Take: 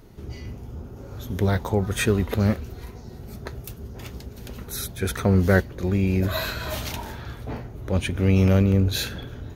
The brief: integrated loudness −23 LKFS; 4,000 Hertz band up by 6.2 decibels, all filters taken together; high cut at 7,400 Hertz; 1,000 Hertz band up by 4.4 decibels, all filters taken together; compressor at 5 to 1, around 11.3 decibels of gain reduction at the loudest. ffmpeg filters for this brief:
ffmpeg -i in.wav -af "lowpass=7400,equalizer=frequency=1000:width_type=o:gain=5.5,equalizer=frequency=4000:width_type=o:gain=7,acompressor=threshold=-26dB:ratio=5,volume=9dB" out.wav

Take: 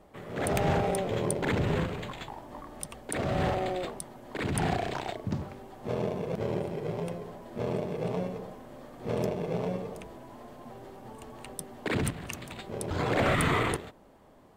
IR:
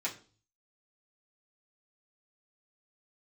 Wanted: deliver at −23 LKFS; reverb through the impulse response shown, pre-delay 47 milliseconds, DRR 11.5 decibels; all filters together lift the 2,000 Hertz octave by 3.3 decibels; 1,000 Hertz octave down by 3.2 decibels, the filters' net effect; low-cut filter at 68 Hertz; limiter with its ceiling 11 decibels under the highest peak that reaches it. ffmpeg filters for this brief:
-filter_complex "[0:a]highpass=68,equalizer=frequency=1000:width_type=o:gain=-6,equalizer=frequency=2000:width_type=o:gain=5.5,alimiter=limit=-23.5dB:level=0:latency=1,asplit=2[link_01][link_02];[1:a]atrim=start_sample=2205,adelay=47[link_03];[link_02][link_03]afir=irnorm=-1:irlink=0,volume=-15.5dB[link_04];[link_01][link_04]amix=inputs=2:normalize=0,volume=12dB"

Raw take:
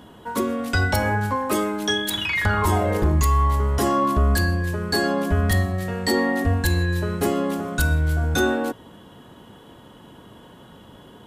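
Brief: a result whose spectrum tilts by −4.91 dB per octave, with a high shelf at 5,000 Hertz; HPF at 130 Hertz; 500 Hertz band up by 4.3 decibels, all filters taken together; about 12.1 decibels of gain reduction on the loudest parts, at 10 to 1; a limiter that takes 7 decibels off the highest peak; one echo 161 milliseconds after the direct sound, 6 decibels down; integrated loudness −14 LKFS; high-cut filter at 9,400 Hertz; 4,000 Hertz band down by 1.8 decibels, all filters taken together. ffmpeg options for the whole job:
ffmpeg -i in.wav -af "highpass=130,lowpass=9400,equalizer=frequency=500:width_type=o:gain=5.5,equalizer=frequency=4000:width_type=o:gain=-6,highshelf=frequency=5000:gain=8.5,acompressor=threshold=-27dB:ratio=10,alimiter=limit=-23dB:level=0:latency=1,aecho=1:1:161:0.501,volume=17.5dB" out.wav

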